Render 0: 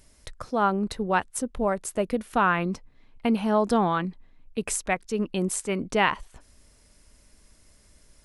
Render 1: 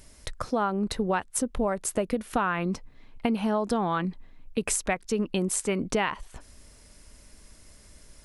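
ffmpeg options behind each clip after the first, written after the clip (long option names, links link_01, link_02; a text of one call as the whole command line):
ffmpeg -i in.wav -af "acompressor=threshold=-28dB:ratio=6,volume=5dB" out.wav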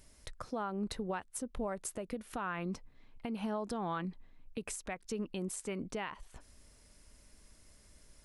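ffmpeg -i in.wav -af "alimiter=limit=-19.5dB:level=0:latency=1:release=177,volume=-8.5dB" out.wav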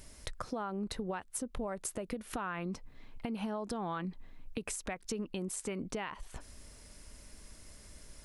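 ffmpeg -i in.wav -af "acompressor=threshold=-44dB:ratio=3,volume=7.5dB" out.wav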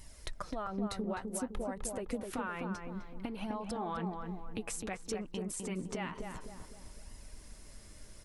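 ffmpeg -i in.wav -filter_complex "[0:a]flanger=delay=1:depth=8.9:regen=31:speed=0.56:shape=sinusoidal,asplit=2[link_01][link_02];[link_02]adelay=256,lowpass=frequency=1300:poles=1,volume=-3.5dB,asplit=2[link_03][link_04];[link_04]adelay=256,lowpass=frequency=1300:poles=1,volume=0.47,asplit=2[link_05][link_06];[link_06]adelay=256,lowpass=frequency=1300:poles=1,volume=0.47,asplit=2[link_07][link_08];[link_08]adelay=256,lowpass=frequency=1300:poles=1,volume=0.47,asplit=2[link_09][link_10];[link_10]adelay=256,lowpass=frequency=1300:poles=1,volume=0.47,asplit=2[link_11][link_12];[link_12]adelay=256,lowpass=frequency=1300:poles=1,volume=0.47[link_13];[link_01][link_03][link_05][link_07][link_09][link_11][link_13]amix=inputs=7:normalize=0,volume=2.5dB" out.wav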